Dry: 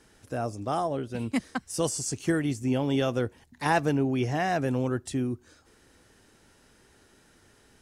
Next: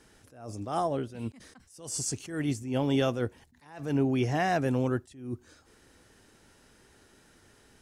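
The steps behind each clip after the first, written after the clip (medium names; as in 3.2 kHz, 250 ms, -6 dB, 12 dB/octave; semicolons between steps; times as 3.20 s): attacks held to a fixed rise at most 100 dB/s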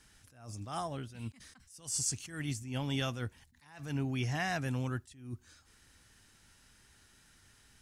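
peaking EQ 440 Hz -14.5 dB 2.1 oct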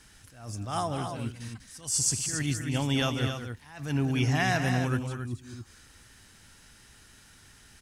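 loudspeakers at several distances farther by 68 m -9 dB, 94 m -8 dB; trim +7 dB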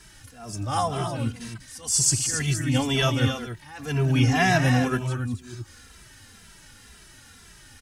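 endless flanger 2.6 ms -2 Hz; trim +8.5 dB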